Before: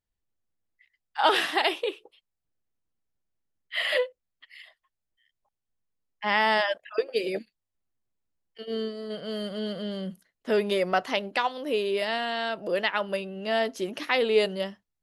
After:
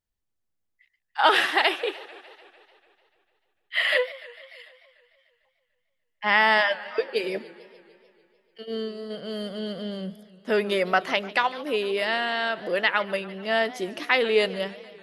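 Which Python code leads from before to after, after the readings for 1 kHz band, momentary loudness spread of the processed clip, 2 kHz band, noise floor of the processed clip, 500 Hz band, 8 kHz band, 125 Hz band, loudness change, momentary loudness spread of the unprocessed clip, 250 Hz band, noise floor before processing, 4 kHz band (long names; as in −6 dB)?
+2.5 dB, 15 LU, +5.5 dB, −77 dBFS, +1.0 dB, can't be measured, +0.5 dB, +3.0 dB, 11 LU, +0.5 dB, −85 dBFS, +2.5 dB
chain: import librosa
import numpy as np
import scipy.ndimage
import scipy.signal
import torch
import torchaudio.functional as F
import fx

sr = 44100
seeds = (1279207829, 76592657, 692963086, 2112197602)

y = fx.dynamic_eq(x, sr, hz=1700.0, q=0.9, threshold_db=-38.0, ratio=4.0, max_db=6)
y = fx.echo_warbled(y, sr, ms=148, feedback_pct=67, rate_hz=2.8, cents=199, wet_db=-19.0)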